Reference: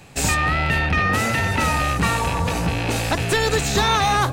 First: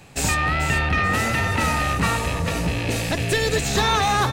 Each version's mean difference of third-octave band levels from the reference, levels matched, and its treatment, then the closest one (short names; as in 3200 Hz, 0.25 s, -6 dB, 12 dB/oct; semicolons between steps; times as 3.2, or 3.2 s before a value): 1.0 dB: spectral gain 2.17–3.64, 690–1600 Hz -7 dB; feedback echo 0.437 s, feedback 32%, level -10 dB; gain -1.5 dB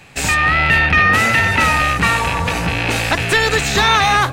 3.0 dB: bell 2100 Hz +8 dB 1.8 oct; AGC; gain -1 dB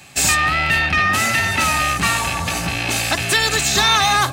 4.5 dB: tilt shelf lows -6 dB, about 1100 Hz; notch comb 480 Hz; gain +3 dB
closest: first